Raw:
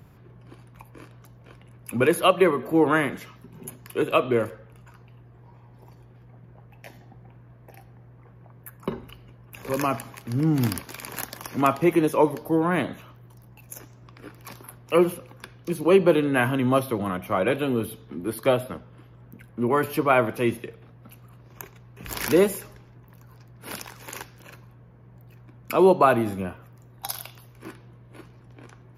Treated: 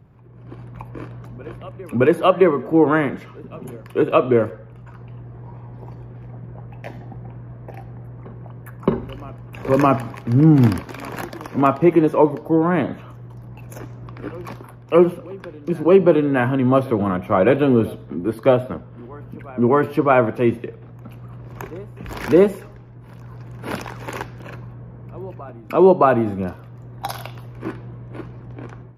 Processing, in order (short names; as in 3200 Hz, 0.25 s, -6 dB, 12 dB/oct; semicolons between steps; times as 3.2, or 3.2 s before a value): LPF 1100 Hz 6 dB/oct; AGC gain up to 14 dB; reverse echo 0.617 s -23.5 dB; gain -1 dB